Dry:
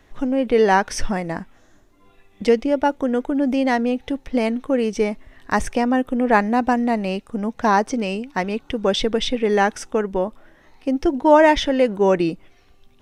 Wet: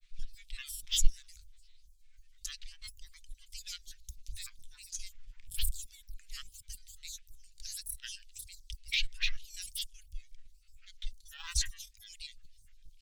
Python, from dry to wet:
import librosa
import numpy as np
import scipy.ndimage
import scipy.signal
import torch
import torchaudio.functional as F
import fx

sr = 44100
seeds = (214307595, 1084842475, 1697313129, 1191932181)

p1 = scipy.signal.sosfilt(scipy.signal.cheby2(4, 70, [160.0, 1100.0], 'bandstop', fs=sr, output='sos'), x)
p2 = fx.level_steps(p1, sr, step_db=15)
p3 = p1 + (p2 * 10.0 ** (0.0 / 20.0))
p4 = fx.granulator(p3, sr, seeds[0], grain_ms=100.0, per_s=20.0, spray_ms=11.0, spread_st=12)
y = p4 * 10.0 ** (-3.5 / 20.0)